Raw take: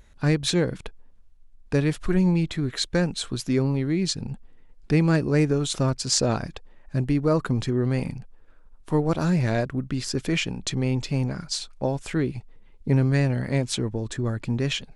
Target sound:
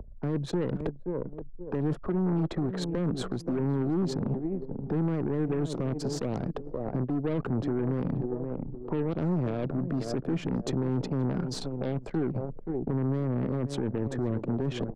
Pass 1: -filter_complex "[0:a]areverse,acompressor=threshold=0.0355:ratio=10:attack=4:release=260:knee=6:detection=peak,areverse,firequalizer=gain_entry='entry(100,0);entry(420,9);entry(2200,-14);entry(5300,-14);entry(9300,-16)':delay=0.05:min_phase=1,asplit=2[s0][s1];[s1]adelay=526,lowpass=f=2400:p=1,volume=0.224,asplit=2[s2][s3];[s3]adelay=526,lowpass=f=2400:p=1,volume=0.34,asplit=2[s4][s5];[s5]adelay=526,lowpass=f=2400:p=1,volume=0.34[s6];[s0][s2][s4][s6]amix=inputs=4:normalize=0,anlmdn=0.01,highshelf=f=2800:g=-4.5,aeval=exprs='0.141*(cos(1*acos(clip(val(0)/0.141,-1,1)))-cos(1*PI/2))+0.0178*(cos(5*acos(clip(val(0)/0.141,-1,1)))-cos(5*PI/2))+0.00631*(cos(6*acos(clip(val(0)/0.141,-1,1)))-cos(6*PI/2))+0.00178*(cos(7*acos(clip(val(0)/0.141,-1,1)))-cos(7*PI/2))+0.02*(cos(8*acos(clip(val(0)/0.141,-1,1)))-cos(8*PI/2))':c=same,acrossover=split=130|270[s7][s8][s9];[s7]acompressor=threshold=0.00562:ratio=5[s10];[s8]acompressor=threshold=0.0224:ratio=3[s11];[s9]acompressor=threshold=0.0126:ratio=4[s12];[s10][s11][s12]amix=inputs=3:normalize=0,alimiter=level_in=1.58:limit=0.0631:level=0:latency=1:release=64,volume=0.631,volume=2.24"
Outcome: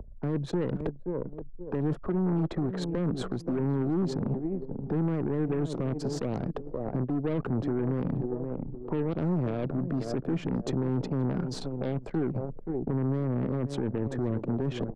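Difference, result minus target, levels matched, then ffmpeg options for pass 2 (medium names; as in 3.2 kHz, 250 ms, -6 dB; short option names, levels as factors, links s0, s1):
4 kHz band -2.5 dB
-filter_complex "[0:a]areverse,acompressor=threshold=0.0355:ratio=10:attack=4:release=260:knee=6:detection=peak,areverse,firequalizer=gain_entry='entry(100,0);entry(420,9);entry(2200,-14);entry(5300,-14);entry(9300,-16)':delay=0.05:min_phase=1,asplit=2[s0][s1];[s1]adelay=526,lowpass=f=2400:p=1,volume=0.224,asplit=2[s2][s3];[s3]adelay=526,lowpass=f=2400:p=1,volume=0.34,asplit=2[s4][s5];[s5]adelay=526,lowpass=f=2400:p=1,volume=0.34[s6];[s0][s2][s4][s6]amix=inputs=4:normalize=0,anlmdn=0.01,aeval=exprs='0.141*(cos(1*acos(clip(val(0)/0.141,-1,1)))-cos(1*PI/2))+0.0178*(cos(5*acos(clip(val(0)/0.141,-1,1)))-cos(5*PI/2))+0.00631*(cos(6*acos(clip(val(0)/0.141,-1,1)))-cos(6*PI/2))+0.00178*(cos(7*acos(clip(val(0)/0.141,-1,1)))-cos(7*PI/2))+0.02*(cos(8*acos(clip(val(0)/0.141,-1,1)))-cos(8*PI/2))':c=same,acrossover=split=130|270[s7][s8][s9];[s7]acompressor=threshold=0.00562:ratio=5[s10];[s8]acompressor=threshold=0.0224:ratio=3[s11];[s9]acompressor=threshold=0.0126:ratio=4[s12];[s10][s11][s12]amix=inputs=3:normalize=0,alimiter=level_in=1.58:limit=0.0631:level=0:latency=1:release=64,volume=0.631,volume=2.24"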